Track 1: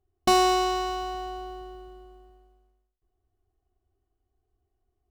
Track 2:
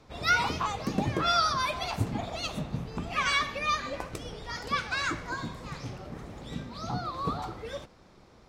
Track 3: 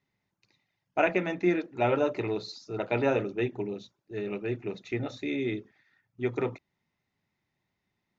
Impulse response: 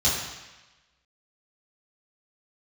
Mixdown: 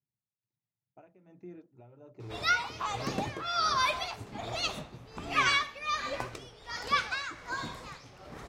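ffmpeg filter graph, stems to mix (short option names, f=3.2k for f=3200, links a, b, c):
-filter_complex "[1:a]equalizer=f=190:w=1.5:g=-3,acrossover=split=7200[a][b];[b]acompressor=threshold=-54dB:ratio=4:attack=1:release=60[c];[a][c]amix=inputs=2:normalize=0,lowshelf=f=470:g=-8.5,adelay=2200,volume=-3dB[d];[2:a]volume=-19dB,equalizer=f=125:t=o:w=1:g=12,equalizer=f=2k:t=o:w=1:g=-9,equalizer=f=4k:t=o:w=1:g=-9,alimiter=level_in=17dB:limit=-24dB:level=0:latency=1:release=418,volume=-17dB,volume=0dB[e];[d][e]amix=inputs=2:normalize=0,dynaudnorm=f=340:g=9:m=6.5dB,tremolo=f=1.3:d=0.74"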